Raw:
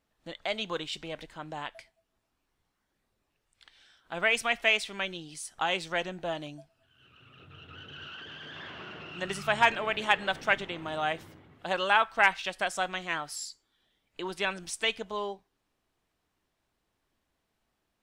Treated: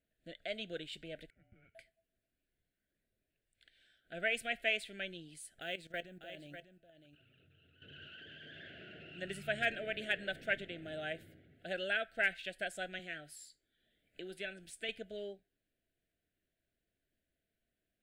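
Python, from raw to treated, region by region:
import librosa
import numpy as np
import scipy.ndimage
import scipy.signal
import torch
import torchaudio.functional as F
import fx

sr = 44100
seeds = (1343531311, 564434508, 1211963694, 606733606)

y = fx.chain(x, sr, fx.delta_mod(bps=64000, step_db=-50.0),
    fx.formant_cascade(vowel='e'),
    fx.ring_mod(carrier_hz=430.0), at=(1.3, 1.75))
y = fx.chain(y, sr, fx.level_steps(step_db=15),
    fx.quant_float(bits=4),
    fx.echo_single(ms=597, db=-10.0), at=(5.61, 7.82))
y = fx.chain(y, sr, fx.comb_fb(f0_hz=76.0, decay_s=0.19, harmonics='all', damping=0.0, mix_pct=50),
    fx.band_squash(depth_pct=40), at=(12.99, 14.89))
y = scipy.signal.sosfilt(scipy.signal.ellip(3, 1.0, 60, [680.0, 1500.0], 'bandstop', fs=sr, output='sos'), y)
y = fx.peak_eq(y, sr, hz=5700.0, db=-14.0, octaves=0.56)
y = y * librosa.db_to_amplitude(-7.0)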